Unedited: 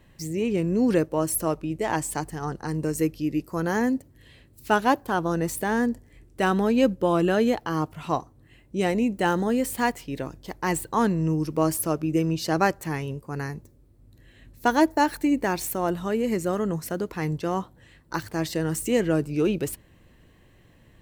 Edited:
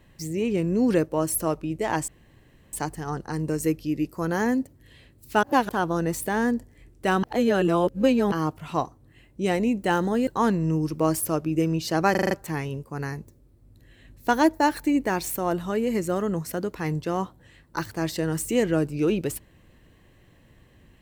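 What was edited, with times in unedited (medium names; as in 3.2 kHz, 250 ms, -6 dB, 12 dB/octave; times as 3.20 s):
2.08 s: insert room tone 0.65 s
4.78–5.04 s: reverse
6.58–7.67 s: reverse
9.62–10.84 s: delete
12.68 s: stutter 0.04 s, 6 plays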